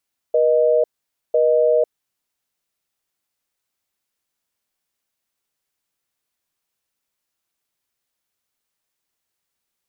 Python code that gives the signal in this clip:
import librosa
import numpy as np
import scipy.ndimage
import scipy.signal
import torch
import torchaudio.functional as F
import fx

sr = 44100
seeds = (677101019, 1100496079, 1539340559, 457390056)

y = fx.call_progress(sr, length_s=1.62, kind='busy tone', level_db=-15.5)